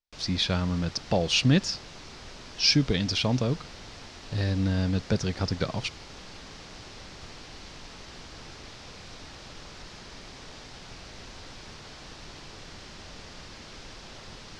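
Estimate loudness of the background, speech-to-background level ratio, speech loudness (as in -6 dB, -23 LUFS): -44.0 LUFS, 17.5 dB, -26.5 LUFS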